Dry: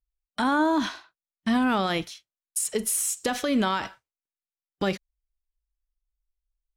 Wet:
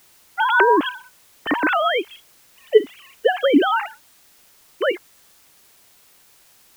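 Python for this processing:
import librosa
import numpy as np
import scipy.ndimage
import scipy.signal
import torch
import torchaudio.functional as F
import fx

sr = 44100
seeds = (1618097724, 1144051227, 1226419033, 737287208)

y = fx.sine_speech(x, sr)
y = fx.quant_dither(y, sr, seeds[0], bits=10, dither='triangular')
y = y * 10.0 ** (6.5 / 20.0)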